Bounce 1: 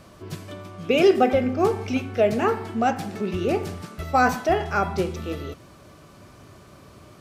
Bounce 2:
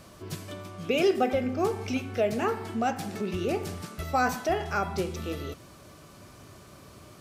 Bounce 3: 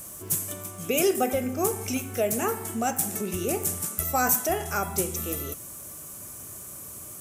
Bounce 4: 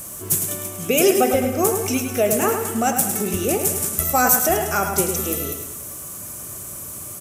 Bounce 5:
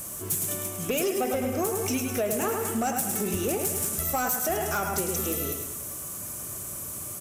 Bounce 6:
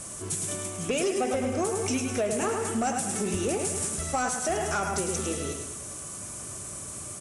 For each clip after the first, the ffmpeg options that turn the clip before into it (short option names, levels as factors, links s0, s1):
-filter_complex "[0:a]highshelf=f=4400:g=6.5,asplit=2[s0][s1];[s1]acompressor=threshold=0.0447:ratio=6,volume=1.12[s2];[s0][s2]amix=inputs=2:normalize=0,volume=0.355"
-af "aexciter=amount=11.5:drive=4.9:freq=6600"
-af "aecho=1:1:105|210|315|420|525|630:0.422|0.202|0.0972|0.0466|0.0224|0.0107,volume=2.11"
-af "acompressor=threshold=0.112:ratio=6,asoftclip=type=tanh:threshold=0.141,volume=0.75"
-ar 22050 -c:a libvorbis -b:a 48k